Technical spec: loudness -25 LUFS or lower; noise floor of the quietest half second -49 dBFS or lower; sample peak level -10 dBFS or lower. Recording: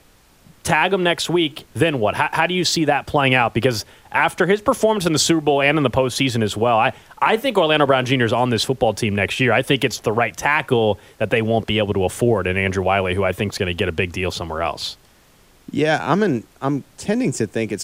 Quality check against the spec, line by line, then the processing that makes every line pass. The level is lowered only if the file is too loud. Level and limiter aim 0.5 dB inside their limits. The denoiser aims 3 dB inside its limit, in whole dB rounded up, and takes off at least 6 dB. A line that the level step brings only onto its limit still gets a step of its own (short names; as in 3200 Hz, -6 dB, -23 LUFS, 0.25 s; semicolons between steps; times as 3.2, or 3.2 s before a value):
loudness -19.0 LUFS: fail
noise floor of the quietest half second -52 dBFS: OK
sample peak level -4.0 dBFS: fail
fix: gain -6.5 dB